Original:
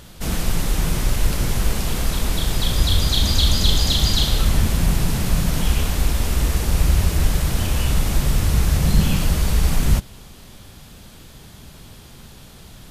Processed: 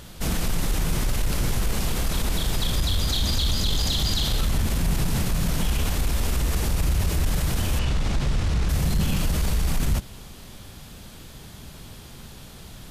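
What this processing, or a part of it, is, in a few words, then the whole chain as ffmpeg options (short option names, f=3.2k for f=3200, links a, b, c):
soft clipper into limiter: -filter_complex "[0:a]asoftclip=type=tanh:threshold=-7dB,alimiter=limit=-15.5dB:level=0:latency=1:release=39,asettb=1/sr,asplit=3[a][b][c];[a]atrim=end=7.794[d];[b]atrim=start=7.79:end=8.69,asetpts=PTS-STARTPTS,afade=t=in:d=0.004:c=qsin,afade=t=out:st=0.896:d=0.004:c=qsin,lowpass=5.6k[e];[c]atrim=start=8.686[f];[d][e]acrossfade=d=0.004:c1=hsin:c2=qsin[g];[g][f]acrossfade=d=0.004:c1=qsin:c2=hsin"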